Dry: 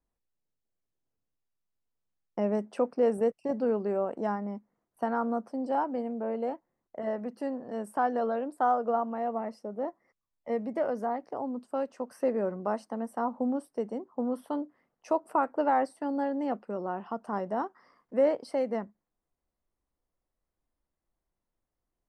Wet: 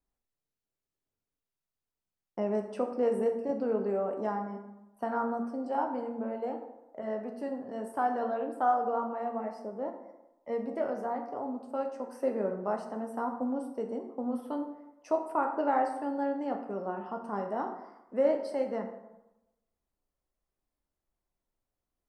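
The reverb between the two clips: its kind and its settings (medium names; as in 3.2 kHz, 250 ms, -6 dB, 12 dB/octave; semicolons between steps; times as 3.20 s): plate-style reverb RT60 0.96 s, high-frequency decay 0.55×, DRR 3 dB; trim -3.5 dB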